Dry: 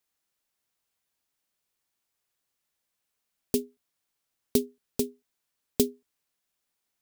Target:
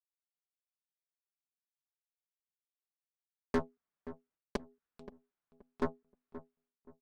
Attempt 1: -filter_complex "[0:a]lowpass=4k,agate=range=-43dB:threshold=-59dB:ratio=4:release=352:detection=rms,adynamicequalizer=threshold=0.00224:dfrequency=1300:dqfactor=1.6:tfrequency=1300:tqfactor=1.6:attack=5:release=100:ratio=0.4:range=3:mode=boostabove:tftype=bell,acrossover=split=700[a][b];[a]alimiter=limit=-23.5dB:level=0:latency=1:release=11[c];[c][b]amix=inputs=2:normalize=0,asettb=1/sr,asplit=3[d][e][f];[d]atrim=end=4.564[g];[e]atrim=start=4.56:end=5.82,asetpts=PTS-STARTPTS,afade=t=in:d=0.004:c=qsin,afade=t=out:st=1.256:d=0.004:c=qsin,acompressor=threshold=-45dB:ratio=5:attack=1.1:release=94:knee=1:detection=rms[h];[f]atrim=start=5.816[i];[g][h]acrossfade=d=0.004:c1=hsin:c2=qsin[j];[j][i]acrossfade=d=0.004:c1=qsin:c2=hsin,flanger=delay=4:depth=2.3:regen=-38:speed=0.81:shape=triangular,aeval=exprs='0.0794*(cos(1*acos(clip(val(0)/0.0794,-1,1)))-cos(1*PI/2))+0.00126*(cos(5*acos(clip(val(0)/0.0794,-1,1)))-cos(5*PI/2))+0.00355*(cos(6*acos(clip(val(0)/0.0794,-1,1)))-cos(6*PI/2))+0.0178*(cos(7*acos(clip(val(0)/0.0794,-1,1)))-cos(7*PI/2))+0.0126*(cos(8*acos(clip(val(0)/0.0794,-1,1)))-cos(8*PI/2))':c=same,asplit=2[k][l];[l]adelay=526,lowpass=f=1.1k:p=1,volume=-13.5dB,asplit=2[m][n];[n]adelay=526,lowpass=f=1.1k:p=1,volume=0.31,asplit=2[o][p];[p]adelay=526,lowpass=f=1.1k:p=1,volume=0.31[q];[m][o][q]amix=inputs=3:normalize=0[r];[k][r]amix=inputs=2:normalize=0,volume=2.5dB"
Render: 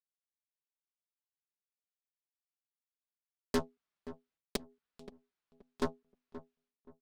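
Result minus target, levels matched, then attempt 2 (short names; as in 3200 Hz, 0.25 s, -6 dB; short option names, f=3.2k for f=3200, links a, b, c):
4000 Hz band +8.5 dB
-filter_complex "[0:a]lowpass=1.8k,agate=range=-43dB:threshold=-59dB:ratio=4:release=352:detection=rms,adynamicequalizer=threshold=0.00224:dfrequency=1300:dqfactor=1.6:tfrequency=1300:tqfactor=1.6:attack=5:release=100:ratio=0.4:range=3:mode=boostabove:tftype=bell,acrossover=split=700[a][b];[a]alimiter=limit=-23.5dB:level=0:latency=1:release=11[c];[c][b]amix=inputs=2:normalize=0,asettb=1/sr,asplit=3[d][e][f];[d]atrim=end=4.564[g];[e]atrim=start=4.56:end=5.82,asetpts=PTS-STARTPTS,afade=t=in:d=0.004:c=qsin,afade=t=out:st=1.256:d=0.004:c=qsin,acompressor=threshold=-45dB:ratio=5:attack=1.1:release=94:knee=1:detection=rms[h];[f]atrim=start=5.816[i];[g][h]acrossfade=d=0.004:c1=hsin:c2=qsin[j];[j][i]acrossfade=d=0.004:c1=qsin:c2=hsin,flanger=delay=4:depth=2.3:regen=-38:speed=0.81:shape=triangular,aeval=exprs='0.0794*(cos(1*acos(clip(val(0)/0.0794,-1,1)))-cos(1*PI/2))+0.00126*(cos(5*acos(clip(val(0)/0.0794,-1,1)))-cos(5*PI/2))+0.00355*(cos(6*acos(clip(val(0)/0.0794,-1,1)))-cos(6*PI/2))+0.0178*(cos(7*acos(clip(val(0)/0.0794,-1,1)))-cos(7*PI/2))+0.0126*(cos(8*acos(clip(val(0)/0.0794,-1,1)))-cos(8*PI/2))':c=same,asplit=2[k][l];[l]adelay=526,lowpass=f=1.1k:p=1,volume=-13.5dB,asplit=2[m][n];[n]adelay=526,lowpass=f=1.1k:p=1,volume=0.31,asplit=2[o][p];[p]adelay=526,lowpass=f=1.1k:p=1,volume=0.31[q];[m][o][q]amix=inputs=3:normalize=0[r];[k][r]amix=inputs=2:normalize=0,volume=2.5dB"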